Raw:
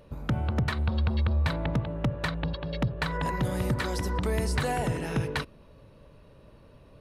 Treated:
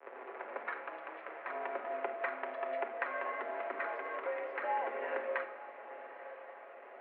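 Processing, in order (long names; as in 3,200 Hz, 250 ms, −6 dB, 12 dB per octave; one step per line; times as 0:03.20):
turntable start at the beginning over 0.75 s
downward compressor 8 to 1, threshold −33 dBFS, peak gain reduction 11.5 dB
log-companded quantiser 4 bits
on a send at −4.5 dB: convolution reverb RT60 0.80 s, pre-delay 7 ms
on the sum: single-sideband voice off tune +98 Hz 350–2,200 Hz
feedback delay with all-pass diffusion 942 ms, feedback 41%, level −14 dB
level +1.5 dB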